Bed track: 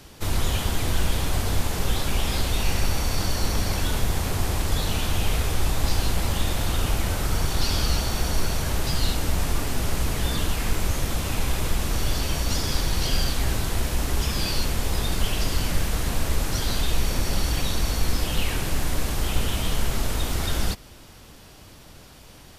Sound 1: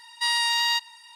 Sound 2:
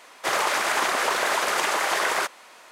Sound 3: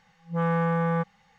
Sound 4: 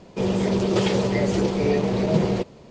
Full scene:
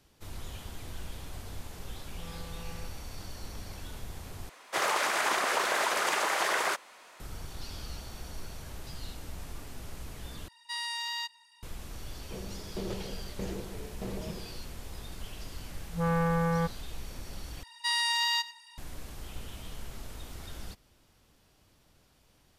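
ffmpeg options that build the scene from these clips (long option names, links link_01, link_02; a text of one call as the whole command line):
ffmpeg -i bed.wav -i cue0.wav -i cue1.wav -i cue2.wav -i cue3.wav -filter_complex "[3:a]asplit=2[link_01][link_02];[1:a]asplit=2[link_03][link_04];[0:a]volume=-18dB[link_05];[link_01]acompressor=threshold=-27dB:ratio=6:attack=3.2:release=140:knee=1:detection=peak[link_06];[4:a]aeval=exprs='val(0)*pow(10,-19*if(lt(mod(1.6*n/s,1),2*abs(1.6)/1000),1-mod(1.6*n/s,1)/(2*abs(1.6)/1000),(mod(1.6*n/s,1)-2*abs(1.6)/1000)/(1-2*abs(1.6)/1000))/20)':channel_layout=same[link_07];[link_04]aecho=1:1:97:0.133[link_08];[link_05]asplit=4[link_09][link_10][link_11][link_12];[link_09]atrim=end=4.494[link_13];[2:a]atrim=end=2.71,asetpts=PTS-STARTPTS,volume=-5dB[link_14];[link_10]atrim=start=7.196:end=10.484[link_15];[link_03]atrim=end=1.15,asetpts=PTS-STARTPTS,volume=-12dB[link_16];[link_11]atrim=start=11.626:end=17.634[link_17];[link_08]atrim=end=1.15,asetpts=PTS-STARTPTS,volume=-5dB[link_18];[link_12]atrim=start=18.776[link_19];[link_06]atrim=end=1.38,asetpts=PTS-STARTPTS,volume=-17dB,afade=type=in:duration=0.004:curve=hsin,afade=type=out:start_time=1.376:duration=0.004:curve=hsin,adelay=1850[link_20];[link_07]atrim=end=2.7,asetpts=PTS-STARTPTS,volume=-12.5dB,afade=type=in:duration=0.004:curve=hsin,afade=type=out:start_time=2.696:duration=0.004:curve=hsin,adelay=12140[link_21];[link_02]atrim=end=1.38,asetpts=PTS-STARTPTS,volume=-3dB,afade=type=in:duration=0.004:curve=hsin,afade=type=out:start_time=1.376:duration=0.004:curve=hsin,adelay=15640[link_22];[link_13][link_14]acrossfade=duration=0.004:curve1=hsin:curve2=hsin[link_23];[link_23][link_15]acrossfade=duration=0.004:curve1=hsin:curve2=hsin[link_24];[link_24][link_16]acrossfade=duration=0.004:curve1=hsin:curve2=hsin[link_25];[link_25][link_17]acrossfade=duration=0.004:curve1=hsin:curve2=hsin[link_26];[link_26][link_18]acrossfade=duration=0.004:curve1=hsin:curve2=hsin[link_27];[link_27][link_19]acrossfade=duration=0.004:curve1=hsin:curve2=hsin[link_28];[link_28][link_20][link_21][link_22]amix=inputs=4:normalize=0" out.wav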